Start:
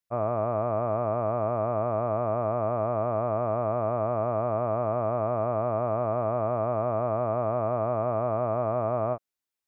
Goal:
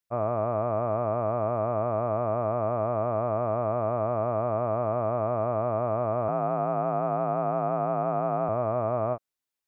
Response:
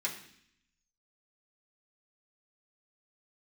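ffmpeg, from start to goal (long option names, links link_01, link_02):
-filter_complex "[0:a]asettb=1/sr,asplit=3[link_01][link_02][link_03];[link_01]atrim=end=6.284[link_04];[link_02]atrim=start=6.28:end=8.49,asetpts=PTS-STARTPTS,afade=type=in:duration=0.004:curve=qsin,afade=type=out:start_time=2.206:duration=0.004:curve=qsin,afreqshift=44[link_05];[link_03]atrim=start=8.486[link_06];[link_04][link_05]acrossfade=duration=0.004:curve1=hsin:curve2=qsin[link_07];[link_07][link_06]acrossfade=duration=0.004:curve1=qsin:curve2=hsin"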